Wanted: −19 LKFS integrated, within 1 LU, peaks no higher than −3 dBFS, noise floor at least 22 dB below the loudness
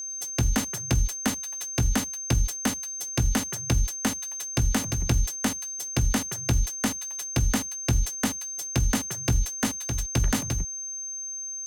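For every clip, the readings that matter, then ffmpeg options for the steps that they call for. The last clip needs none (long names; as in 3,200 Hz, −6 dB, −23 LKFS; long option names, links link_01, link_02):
interfering tone 6,300 Hz; level of the tone −32 dBFS; integrated loudness −27.0 LKFS; sample peak −12.5 dBFS; target loudness −19.0 LKFS
→ -af "bandreject=frequency=6300:width=30"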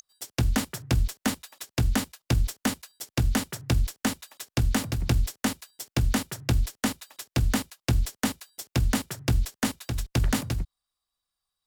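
interfering tone none found; integrated loudness −28.5 LKFS; sample peak −13.0 dBFS; target loudness −19.0 LKFS
→ -af "volume=9.5dB"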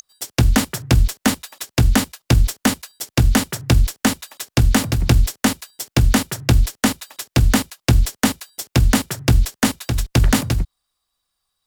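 integrated loudness −19.0 LKFS; sample peak −3.5 dBFS; background noise floor −82 dBFS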